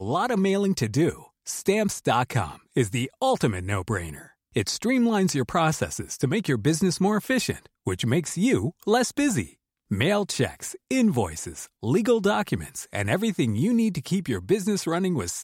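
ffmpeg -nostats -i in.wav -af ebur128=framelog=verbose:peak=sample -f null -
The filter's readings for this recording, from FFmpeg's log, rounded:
Integrated loudness:
  I:         -24.9 LUFS
  Threshold: -35.1 LUFS
Loudness range:
  LRA:         1.5 LU
  Threshold: -45.2 LUFS
  LRA low:   -25.9 LUFS
  LRA high:  -24.3 LUFS
Sample peak:
  Peak:       -8.9 dBFS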